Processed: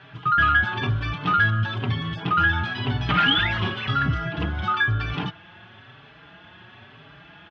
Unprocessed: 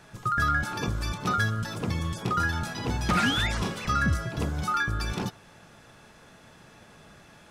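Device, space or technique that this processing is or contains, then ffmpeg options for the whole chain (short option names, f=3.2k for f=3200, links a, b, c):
barber-pole flanger into a guitar amplifier: -filter_complex "[0:a]asplit=2[a][b];[b]adelay=4.7,afreqshift=1[c];[a][c]amix=inputs=2:normalize=1,asoftclip=type=tanh:threshold=-20dB,highpass=81,equalizer=f=110:t=q:w=4:g=5,equalizer=f=210:t=q:w=4:g=-5,equalizer=f=510:t=q:w=4:g=-9,equalizer=f=1.6k:t=q:w=4:g=4,equalizer=f=3.1k:t=q:w=4:g=10,lowpass=f=3.4k:w=0.5412,lowpass=f=3.4k:w=1.3066,volume=7.5dB"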